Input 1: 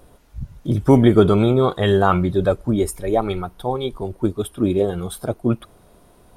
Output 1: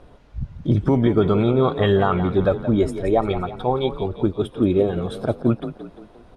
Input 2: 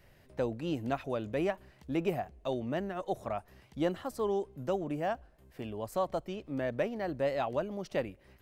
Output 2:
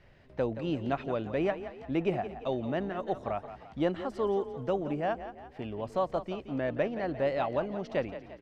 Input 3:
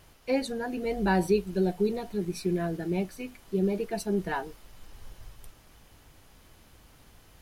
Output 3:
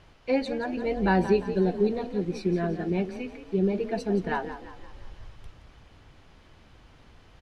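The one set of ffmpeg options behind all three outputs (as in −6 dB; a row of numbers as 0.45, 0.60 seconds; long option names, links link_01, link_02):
-filter_complex "[0:a]lowpass=4000,alimiter=limit=-10dB:level=0:latency=1:release=419,asplit=6[link_01][link_02][link_03][link_04][link_05][link_06];[link_02]adelay=173,afreqshift=31,volume=-12dB[link_07];[link_03]adelay=346,afreqshift=62,volume=-18.6dB[link_08];[link_04]adelay=519,afreqshift=93,volume=-25.1dB[link_09];[link_05]adelay=692,afreqshift=124,volume=-31.7dB[link_10];[link_06]adelay=865,afreqshift=155,volume=-38.2dB[link_11];[link_01][link_07][link_08][link_09][link_10][link_11]amix=inputs=6:normalize=0,volume=2dB"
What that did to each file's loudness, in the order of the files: −1.5, +2.0, +2.0 LU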